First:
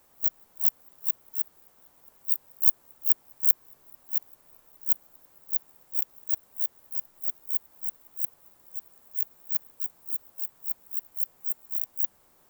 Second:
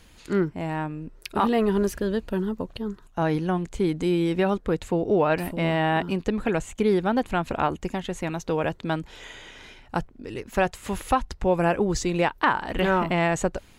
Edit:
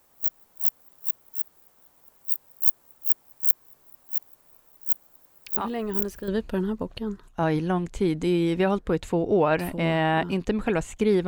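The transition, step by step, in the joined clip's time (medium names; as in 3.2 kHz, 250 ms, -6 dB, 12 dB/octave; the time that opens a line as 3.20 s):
first
5.45 s: add second from 1.24 s 0.83 s -8 dB
6.28 s: go over to second from 2.07 s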